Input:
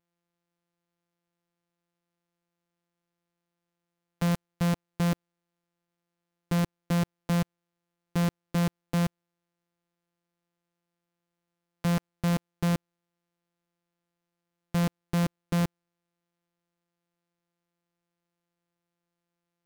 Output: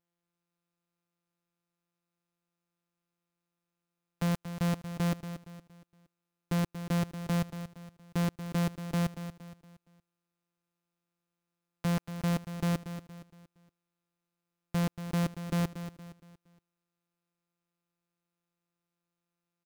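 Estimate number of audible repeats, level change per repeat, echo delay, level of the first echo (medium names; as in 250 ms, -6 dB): 3, -8.0 dB, 233 ms, -11.0 dB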